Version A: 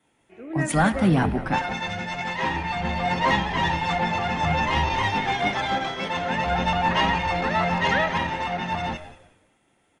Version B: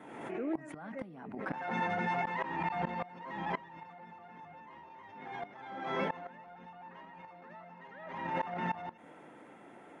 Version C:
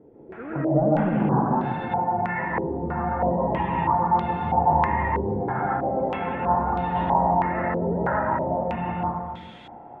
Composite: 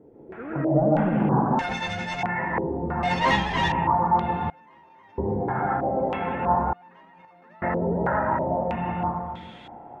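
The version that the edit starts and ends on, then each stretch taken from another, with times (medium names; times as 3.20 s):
C
1.59–2.23 s: from A
3.03–3.72 s: from A
4.50–5.18 s: from B
6.73–7.62 s: from B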